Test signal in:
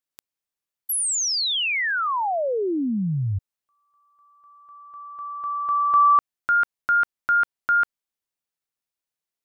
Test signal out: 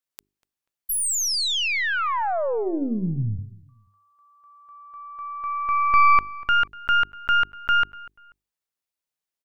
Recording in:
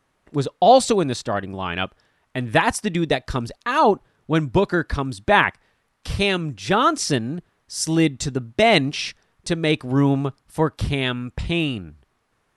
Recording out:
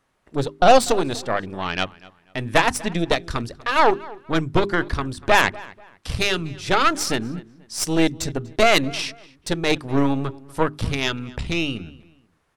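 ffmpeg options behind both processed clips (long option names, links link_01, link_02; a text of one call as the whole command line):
ffmpeg -i in.wav -filter_complex "[0:a]aeval=exprs='0.841*(cos(1*acos(clip(val(0)/0.841,-1,1)))-cos(1*PI/2))+0.0106*(cos(5*acos(clip(val(0)/0.841,-1,1)))-cos(5*PI/2))+0.15*(cos(6*acos(clip(val(0)/0.841,-1,1)))-cos(6*PI/2))':channel_layout=same,bandreject=frequency=50:width_type=h:width=6,bandreject=frequency=100:width_type=h:width=6,bandreject=frequency=150:width_type=h:width=6,bandreject=frequency=200:width_type=h:width=6,bandreject=frequency=250:width_type=h:width=6,bandreject=frequency=300:width_type=h:width=6,bandreject=frequency=350:width_type=h:width=6,bandreject=frequency=400:width_type=h:width=6,asplit=2[link_01][link_02];[link_02]adelay=243,lowpass=frequency=3000:poles=1,volume=-20.5dB,asplit=2[link_03][link_04];[link_04]adelay=243,lowpass=frequency=3000:poles=1,volume=0.31[link_05];[link_01][link_03][link_05]amix=inputs=3:normalize=0,volume=-1dB" out.wav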